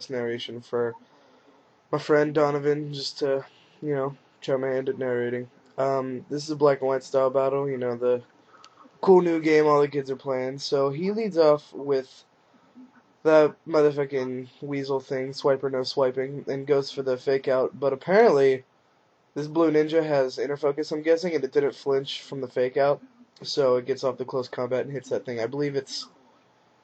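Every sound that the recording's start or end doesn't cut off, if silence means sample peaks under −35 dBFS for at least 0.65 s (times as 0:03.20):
0:01.93–0:12.02
0:13.25–0:18.59
0:19.36–0:26.04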